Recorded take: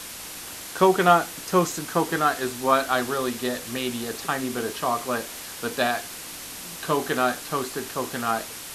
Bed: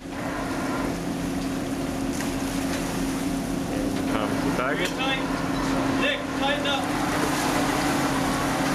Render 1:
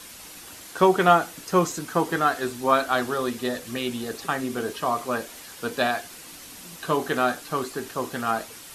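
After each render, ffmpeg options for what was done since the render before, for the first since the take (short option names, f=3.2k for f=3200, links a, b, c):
-af "afftdn=nr=7:nf=-38"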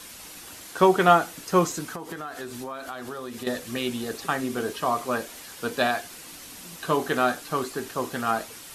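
-filter_complex "[0:a]asettb=1/sr,asplit=3[a][b][c];[a]atrim=end=1.884[d];[b]atrim=start=1.88:end=3.47,asetpts=PTS-STARTPTS,afade=t=in:d=0.004:c=qsin,afade=t=out:st=1.586:d=0.004:c=qsin,acompressor=threshold=-31dB:ratio=10:attack=3.2:release=140:knee=1:detection=peak[e];[c]atrim=start=3.466[f];[d][e]acrossfade=d=0.004:c1=hsin:c2=qsin[g];[g][f]acrossfade=d=0.004:c1=qsin:c2=hsin"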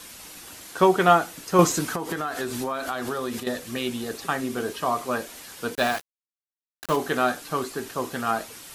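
-filter_complex "[0:a]asettb=1/sr,asplit=3[a][b][c];[a]atrim=end=5.754[d];[b]atrim=start=5.75:end=6.96,asetpts=PTS-STARTPTS,afade=t=in:d=0.004:c=qsin,afade=t=out:st=1.206:d=0.004:c=qsin,aeval=exprs='val(0)*gte(abs(val(0)),0.0355)':c=same[e];[c]atrim=start=6.956[f];[d][e]acrossfade=d=0.004:c1=hsin:c2=qsin[g];[g][f]acrossfade=d=0.004:c1=qsin:c2=hsin,asplit=3[h][i][j];[h]atrim=end=1.592[k];[i]atrim=start=1.588:end=3.402,asetpts=PTS-STARTPTS,volume=6.5dB[l];[j]atrim=start=3.398[m];[k][l]acrossfade=d=0.004:c1=hsin:c2=hsin[n];[n][m]acrossfade=d=0.004:c1=hsin:c2=hsin"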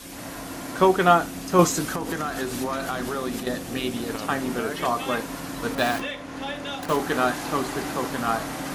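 -filter_complex "[1:a]volume=-8dB[a];[0:a][a]amix=inputs=2:normalize=0"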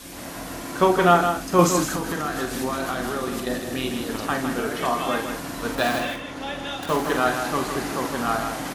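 -filter_complex "[0:a]asplit=2[a][b];[b]adelay=46,volume=-7.5dB[c];[a][c]amix=inputs=2:normalize=0,aecho=1:1:159:0.447"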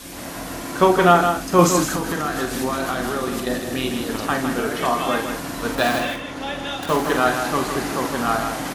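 -af "volume=3dB,alimiter=limit=-2dB:level=0:latency=1"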